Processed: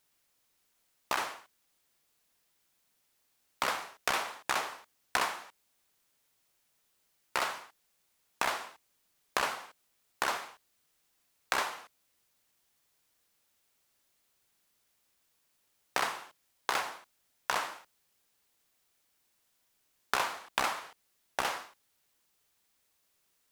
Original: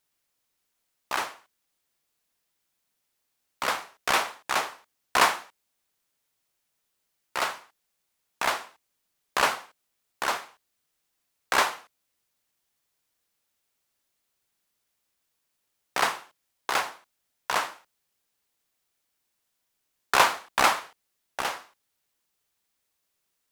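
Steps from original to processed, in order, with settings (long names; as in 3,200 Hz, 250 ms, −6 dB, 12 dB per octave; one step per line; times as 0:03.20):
downward compressor 8 to 1, threshold −31 dBFS, peak gain reduction 17.5 dB
level +3.5 dB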